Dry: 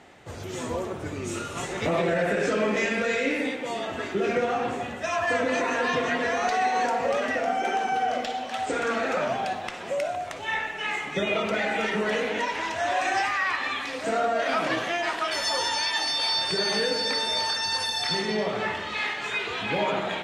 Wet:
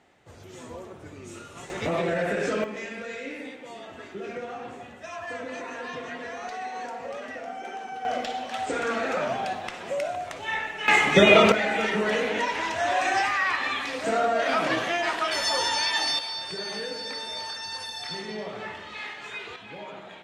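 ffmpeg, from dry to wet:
ffmpeg -i in.wav -af "asetnsamples=nb_out_samples=441:pad=0,asendcmd='1.7 volume volume -2dB;2.64 volume volume -10.5dB;8.05 volume volume -1dB;10.88 volume volume 11dB;11.52 volume volume 1dB;16.19 volume volume -8dB;19.56 volume volume -14.5dB',volume=-10dB" out.wav

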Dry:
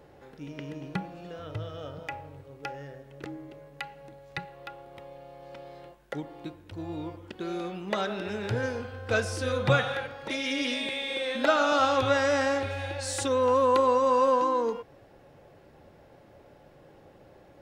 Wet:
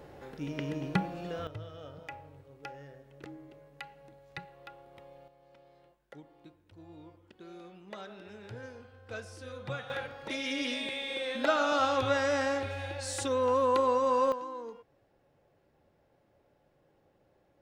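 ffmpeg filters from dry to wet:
ffmpeg -i in.wav -af "asetnsamples=nb_out_samples=441:pad=0,asendcmd='1.47 volume volume -7dB;5.28 volume volume -15dB;9.9 volume volume -4dB;14.32 volume volume -14.5dB',volume=3.5dB" out.wav

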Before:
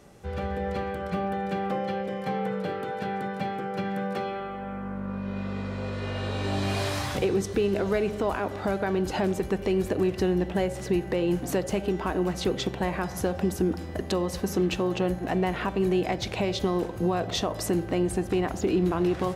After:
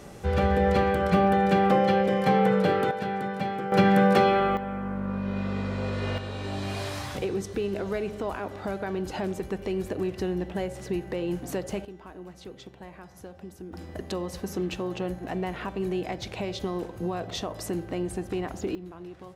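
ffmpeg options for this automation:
ffmpeg -i in.wav -af "asetnsamples=nb_out_samples=441:pad=0,asendcmd='2.91 volume volume 1dB;3.72 volume volume 11dB;4.57 volume volume 2.5dB;6.18 volume volume -4.5dB;11.85 volume volume -16.5dB;13.73 volume volume -5dB;18.75 volume volume -17.5dB',volume=8dB" out.wav

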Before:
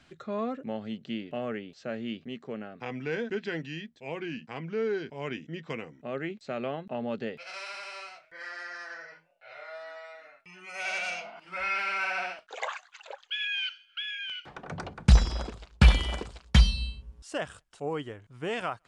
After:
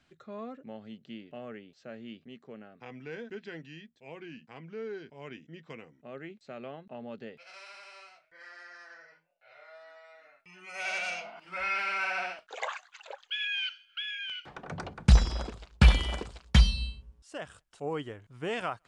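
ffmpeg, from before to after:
ffmpeg -i in.wav -af "volume=8dB,afade=type=in:start_time=10.03:duration=0.8:silence=0.398107,afade=type=out:start_time=16.84:duration=0.38:silence=0.354813,afade=type=in:start_time=17.22:duration=0.73:silence=0.354813" out.wav

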